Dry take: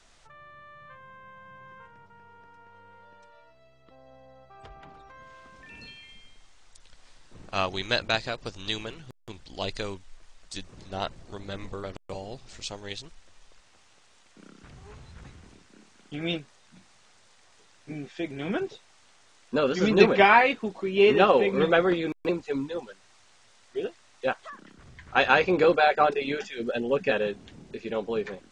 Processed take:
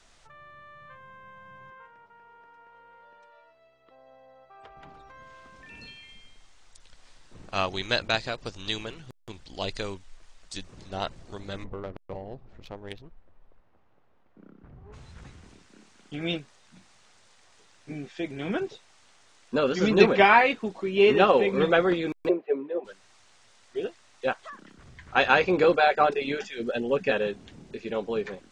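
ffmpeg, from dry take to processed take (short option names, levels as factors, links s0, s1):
-filter_complex "[0:a]asettb=1/sr,asplit=3[s0][s1][s2];[s0]atrim=end=1.704[s3];[s1]atrim=start=1.7:end=4.77,asetpts=PTS-STARTPTS,afade=t=in:d=0.004:c=qsin,afade=t=out:st=3.066:d=0.004:c=qsin,bass=f=250:g=-14,treble=f=4000:g=-9[s4];[s2]atrim=start=4.766[s5];[s3][s4]acrossfade=d=0.004:c1=hsin:c2=qsin[s6];[s6][s5]acrossfade=d=0.004:c1=qsin:c2=hsin,asplit=3[s7][s8][s9];[s7]afade=t=out:st=11.63:d=0.02[s10];[s8]adynamicsmooth=sensitivity=2:basefreq=1000,afade=t=in:st=11.63:d=0.02,afade=t=out:st=14.92:d=0.02[s11];[s9]afade=t=in:st=14.92:d=0.02[s12];[s10][s11][s12]amix=inputs=3:normalize=0,asplit=3[s13][s14][s15];[s13]afade=t=out:st=22.28:d=0.02[s16];[s14]highpass=f=240:w=0.5412,highpass=f=240:w=1.3066,equalizer=f=270:t=q:w=4:g=-6,equalizer=f=390:t=q:w=4:g=8,equalizer=f=630:t=q:w=4:g=9,equalizer=f=900:t=q:w=4:g=-8,equalizer=f=1400:t=q:w=4:g=-8,equalizer=f=2000:t=q:w=4:g=-4,lowpass=f=2200:w=0.5412,lowpass=f=2200:w=1.3066,afade=t=in:st=22.28:d=0.02,afade=t=out:st=22.84:d=0.02[s17];[s15]afade=t=in:st=22.84:d=0.02[s18];[s16][s17][s18]amix=inputs=3:normalize=0"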